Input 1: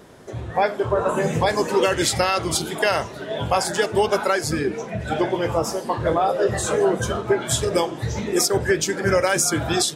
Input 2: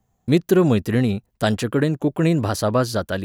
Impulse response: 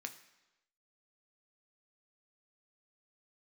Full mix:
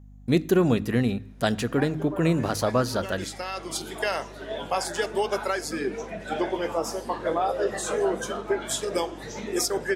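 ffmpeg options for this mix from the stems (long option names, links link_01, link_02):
-filter_complex "[0:a]highpass=frequency=190:width=0.5412,highpass=frequency=190:width=1.3066,dynaudnorm=framelen=150:gausssize=3:maxgain=7dB,adelay=1200,volume=-12dB,asplit=2[link_01][link_02];[link_02]volume=-13dB[link_03];[1:a]volume=-6dB,asplit=3[link_04][link_05][link_06];[link_05]volume=-5dB[link_07];[link_06]apad=whole_len=492055[link_08];[link_01][link_08]sidechaincompress=threshold=-36dB:ratio=8:attack=31:release=923[link_09];[2:a]atrim=start_sample=2205[link_10];[link_03][link_07]amix=inputs=2:normalize=0[link_11];[link_11][link_10]afir=irnorm=-1:irlink=0[link_12];[link_09][link_04][link_12]amix=inputs=3:normalize=0,bandreject=frequency=51.93:width_type=h:width=4,bandreject=frequency=103.86:width_type=h:width=4,bandreject=frequency=155.79:width_type=h:width=4,bandreject=frequency=207.72:width_type=h:width=4,bandreject=frequency=259.65:width_type=h:width=4,bandreject=frequency=311.58:width_type=h:width=4,aeval=exprs='val(0)+0.00501*(sin(2*PI*50*n/s)+sin(2*PI*2*50*n/s)/2+sin(2*PI*3*50*n/s)/3+sin(2*PI*4*50*n/s)/4+sin(2*PI*5*50*n/s)/5)':channel_layout=same"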